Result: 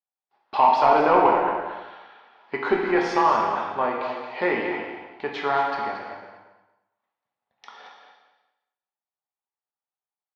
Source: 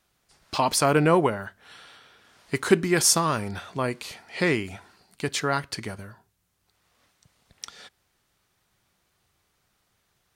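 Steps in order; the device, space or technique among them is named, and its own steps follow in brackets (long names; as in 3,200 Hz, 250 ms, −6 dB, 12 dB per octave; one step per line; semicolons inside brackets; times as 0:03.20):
intercom (band-pass filter 350–4,700 Hz; parametric band 850 Hz +12 dB 0.54 octaves; soft clipping −9.5 dBFS, distortion −16 dB)
downward expander −51 dBFS
high-frequency loss of the air 300 metres
repeating echo 227 ms, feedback 19%, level −9 dB
reverb whose tail is shaped and stops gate 430 ms falling, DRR −1 dB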